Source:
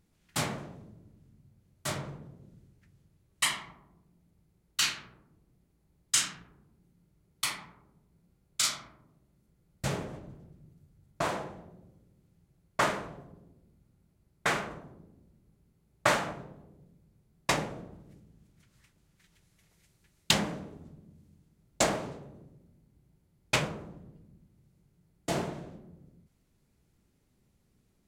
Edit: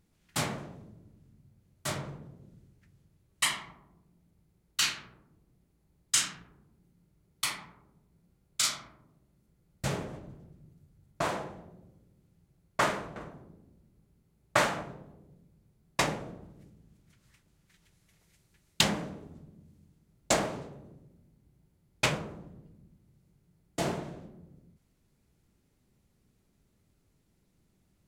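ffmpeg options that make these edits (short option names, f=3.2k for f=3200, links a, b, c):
-filter_complex "[0:a]asplit=2[a][b];[a]atrim=end=13.162[c];[b]atrim=start=14.658[d];[c][d]acrossfade=d=0.004:c1=hsin:c2=hsin"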